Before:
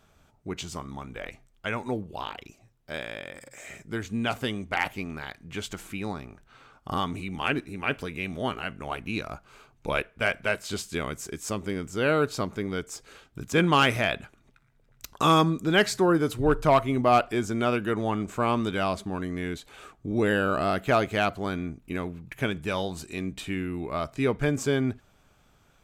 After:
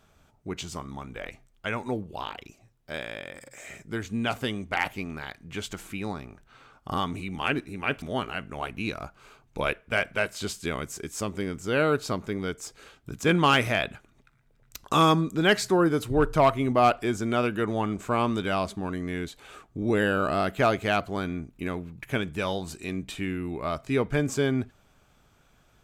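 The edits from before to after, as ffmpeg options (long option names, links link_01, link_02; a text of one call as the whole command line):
ffmpeg -i in.wav -filter_complex "[0:a]asplit=2[link_01][link_02];[link_01]atrim=end=8.022[link_03];[link_02]atrim=start=8.308[link_04];[link_03][link_04]acrossfade=duration=0.004:curve1=hsin:curve2=hsin" out.wav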